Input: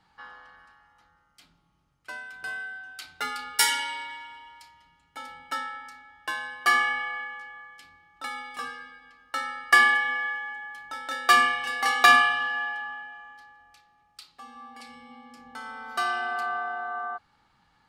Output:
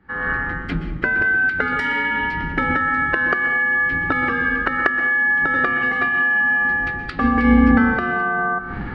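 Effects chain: octaver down 2 oct, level -5 dB; recorder AGC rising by 47 dB/s; synth low-pass 1800 Hz, resonance Q 2.8; time stretch by phase-locked vocoder 0.5×; compressor 4:1, threshold -18 dBFS, peak gain reduction 17 dB; resonant low shelf 550 Hz +13 dB, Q 1.5; plate-style reverb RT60 0.57 s, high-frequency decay 0.85×, pre-delay 0.11 s, DRR 9.5 dB

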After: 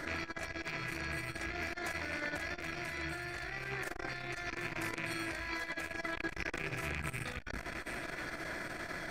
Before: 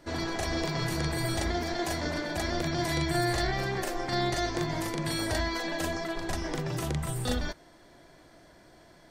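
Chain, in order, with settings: rattling part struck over -37 dBFS, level -25 dBFS; band shelf 1700 Hz +9.5 dB 1.1 oct; notches 50/100/150/200/250 Hz; negative-ratio compressor -39 dBFS, ratio -1; split-band echo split 630 Hz, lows 0.19 s, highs 0.779 s, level -9.5 dB; core saturation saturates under 450 Hz; gain +1 dB

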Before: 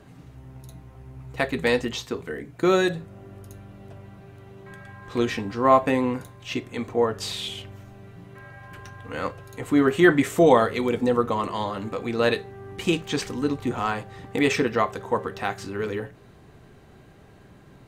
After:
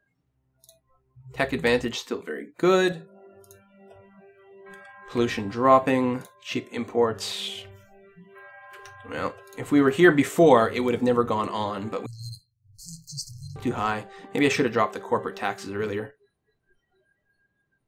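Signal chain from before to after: spectral noise reduction 28 dB; 2.92–3.96 low shelf 160 Hz -11.5 dB; 12.06–13.56 brick-wall FIR band-stop 150–4100 Hz

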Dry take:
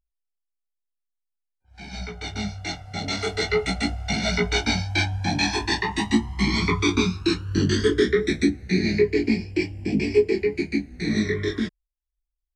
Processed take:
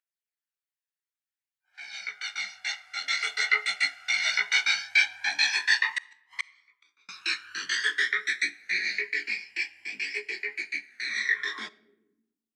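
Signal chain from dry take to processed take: phaser 0.57 Hz, delay 1.2 ms, feedback 31%; 5.89–7.09 flipped gate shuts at -16 dBFS, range -41 dB; on a send at -20 dB: reverb RT60 0.90 s, pre-delay 5 ms; on the sum: high-pass sweep 1700 Hz -> 270 Hz, 11.33–12.17; gain -2.5 dB

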